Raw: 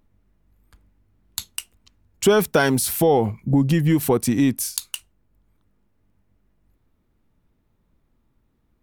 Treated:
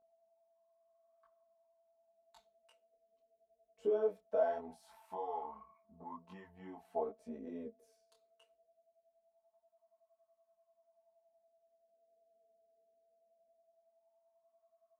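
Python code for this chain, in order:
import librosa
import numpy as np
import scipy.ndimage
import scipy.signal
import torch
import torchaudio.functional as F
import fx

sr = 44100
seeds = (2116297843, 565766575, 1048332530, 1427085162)

y = fx.wah_lfo(x, sr, hz=0.37, low_hz=460.0, high_hz=1100.0, q=11.0)
y = y + 10.0 ** (-68.0 / 20.0) * np.sin(2.0 * np.pi * 670.0 * np.arange(len(y)) / sr)
y = fx.stretch_grains(y, sr, factor=1.7, grain_ms=22.0)
y = fx.detune_double(y, sr, cents=28)
y = F.gain(torch.from_numpy(y), 1.0).numpy()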